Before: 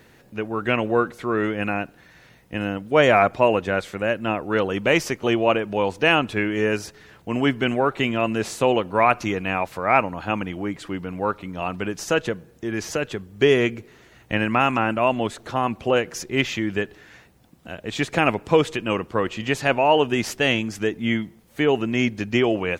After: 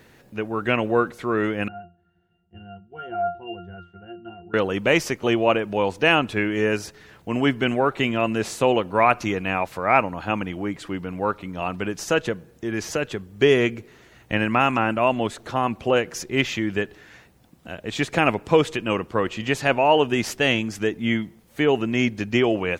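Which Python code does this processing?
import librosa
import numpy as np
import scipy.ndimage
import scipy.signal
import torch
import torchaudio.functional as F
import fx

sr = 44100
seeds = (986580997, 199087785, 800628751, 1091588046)

y = fx.octave_resonator(x, sr, note='F', decay_s=0.28, at=(1.68, 4.54))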